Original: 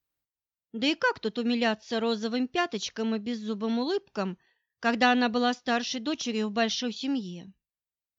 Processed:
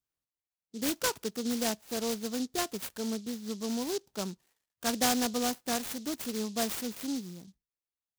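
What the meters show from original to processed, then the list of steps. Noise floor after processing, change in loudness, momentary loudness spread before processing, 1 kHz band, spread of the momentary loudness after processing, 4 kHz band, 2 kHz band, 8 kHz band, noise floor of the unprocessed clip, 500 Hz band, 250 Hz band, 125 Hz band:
under -85 dBFS, -4.5 dB, 9 LU, -7.0 dB, 9 LU, -4.5 dB, -10.0 dB, no reading, under -85 dBFS, -5.5 dB, -5.0 dB, -4.5 dB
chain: delay time shaken by noise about 4.9 kHz, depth 0.13 ms; trim -5 dB

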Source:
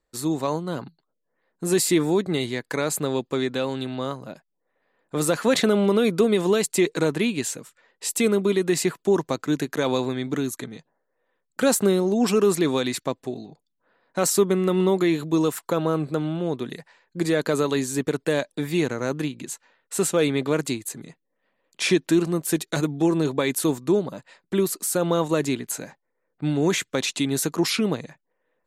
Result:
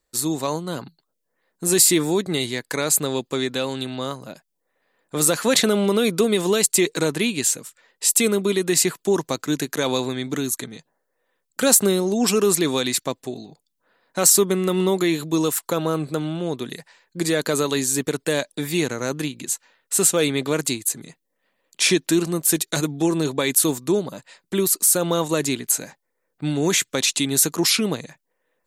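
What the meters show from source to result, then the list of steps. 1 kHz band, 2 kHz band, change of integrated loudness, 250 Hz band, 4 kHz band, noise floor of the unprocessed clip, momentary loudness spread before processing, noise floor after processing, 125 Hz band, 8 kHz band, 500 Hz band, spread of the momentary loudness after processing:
+1.0 dB, +3.0 dB, +3.0 dB, 0.0 dB, +6.0 dB, -77 dBFS, 12 LU, -76 dBFS, 0.0 dB, +9.5 dB, 0.0 dB, 11 LU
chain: treble shelf 3.6 kHz +11.5 dB

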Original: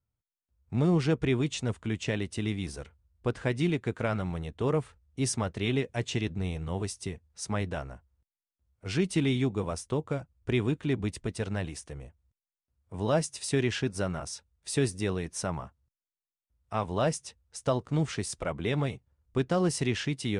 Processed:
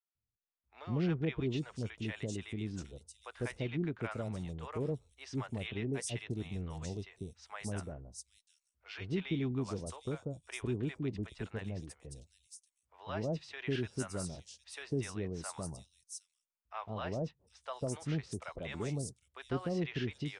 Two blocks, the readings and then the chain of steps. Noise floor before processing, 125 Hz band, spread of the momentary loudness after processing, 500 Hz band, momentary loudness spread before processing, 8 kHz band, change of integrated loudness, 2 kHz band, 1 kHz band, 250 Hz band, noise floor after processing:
under -85 dBFS, -7.5 dB, 14 LU, -9.0 dB, 12 LU, -9.0 dB, -8.5 dB, -8.0 dB, -9.5 dB, -8.0 dB, under -85 dBFS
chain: three bands offset in time mids, lows, highs 150/760 ms, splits 690/4700 Hz; trim -7.5 dB

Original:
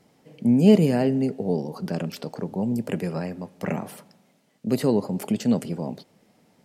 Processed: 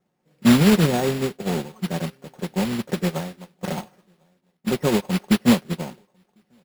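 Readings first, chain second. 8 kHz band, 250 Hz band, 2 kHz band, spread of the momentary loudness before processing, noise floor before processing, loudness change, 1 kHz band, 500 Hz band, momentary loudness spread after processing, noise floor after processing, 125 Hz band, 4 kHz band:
+9.5 dB, +1.5 dB, +9.5 dB, 16 LU, -63 dBFS, +2.0 dB, +5.5 dB, -0.5 dB, 16 LU, -72 dBFS, +2.0 dB, +10.0 dB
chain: low-pass 2 kHz 24 dB/octave; dynamic bell 880 Hz, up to +5 dB, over -41 dBFS, Q 1.9; comb 5.5 ms, depth 50%; peak limiter -15 dBFS, peak gain reduction 10.5 dB; modulation noise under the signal 11 dB; on a send: feedback delay 1050 ms, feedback 23%, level -21 dB; on the sum: careless resampling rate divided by 6×, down none, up hold; upward expansion 2.5:1, over -33 dBFS; trim +8 dB

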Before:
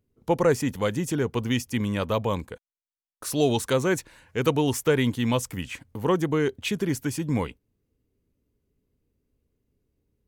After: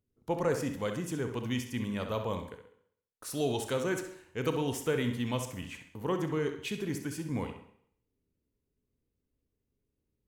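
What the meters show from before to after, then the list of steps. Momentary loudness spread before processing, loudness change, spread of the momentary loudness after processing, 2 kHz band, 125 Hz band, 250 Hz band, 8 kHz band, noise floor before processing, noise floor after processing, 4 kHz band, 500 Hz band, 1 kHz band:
10 LU, -8.0 dB, 10 LU, -8.0 dB, -8.5 dB, -8.0 dB, -8.5 dB, under -85 dBFS, -84 dBFS, -8.0 dB, -8.0 dB, -8.0 dB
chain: on a send: tape echo 65 ms, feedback 44%, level -7.5 dB, low-pass 4.6 kHz; on the sum: Schroeder reverb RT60 0.65 s, combs from 25 ms, DRR 10 dB; trim -9 dB

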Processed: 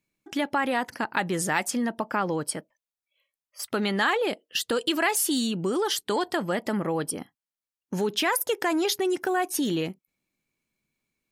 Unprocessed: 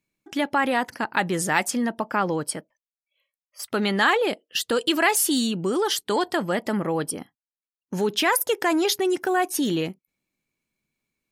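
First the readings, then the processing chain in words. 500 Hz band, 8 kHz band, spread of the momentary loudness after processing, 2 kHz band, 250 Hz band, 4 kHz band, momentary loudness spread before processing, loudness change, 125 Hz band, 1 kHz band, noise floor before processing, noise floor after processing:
-3.0 dB, -2.5 dB, 7 LU, -3.5 dB, -2.5 dB, -3.0 dB, 9 LU, -3.0 dB, -2.0 dB, -3.5 dB, under -85 dBFS, under -85 dBFS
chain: compression 1.5:1, threshold -27 dBFS, peak gain reduction 4.5 dB

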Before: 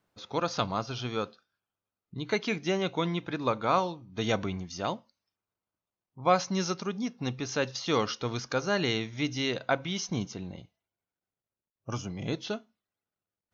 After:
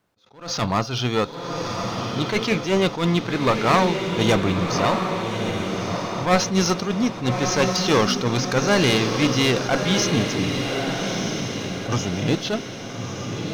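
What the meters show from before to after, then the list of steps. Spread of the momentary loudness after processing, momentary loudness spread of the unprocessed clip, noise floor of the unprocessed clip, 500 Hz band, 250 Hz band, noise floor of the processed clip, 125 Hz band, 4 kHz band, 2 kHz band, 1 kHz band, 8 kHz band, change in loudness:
9 LU, 11 LU, under -85 dBFS, +9.5 dB, +11.5 dB, -34 dBFS, +12.0 dB, +11.5 dB, +10.5 dB, +8.5 dB, no reading, +9.0 dB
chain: one-sided clip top -29.5 dBFS; waveshaping leveller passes 1; on a send: echo that smears into a reverb 1248 ms, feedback 50%, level -5 dB; on the sum: attacks held to a fixed rise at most 140 dB/s; trim +8 dB

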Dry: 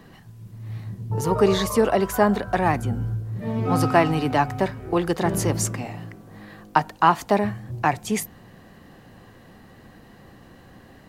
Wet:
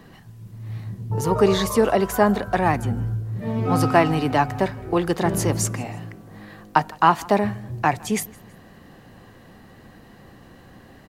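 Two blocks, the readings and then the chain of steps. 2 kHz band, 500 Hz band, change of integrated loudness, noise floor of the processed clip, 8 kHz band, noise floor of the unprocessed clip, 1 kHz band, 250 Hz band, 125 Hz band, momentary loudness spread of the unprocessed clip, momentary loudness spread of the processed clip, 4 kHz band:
+1.0 dB, +1.0 dB, +1.0 dB, -48 dBFS, +1.0 dB, -49 dBFS, +1.0 dB, +1.0 dB, +1.0 dB, 15 LU, 15 LU, +1.0 dB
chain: feedback delay 162 ms, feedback 38%, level -24 dB; trim +1 dB

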